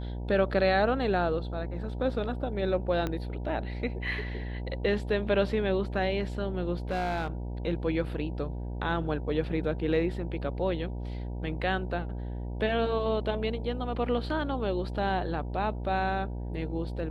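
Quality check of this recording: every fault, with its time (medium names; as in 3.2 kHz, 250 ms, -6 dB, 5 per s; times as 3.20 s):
buzz 60 Hz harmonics 16 -35 dBFS
3.07 s: pop -18 dBFS
6.91–7.28 s: clipped -25.5 dBFS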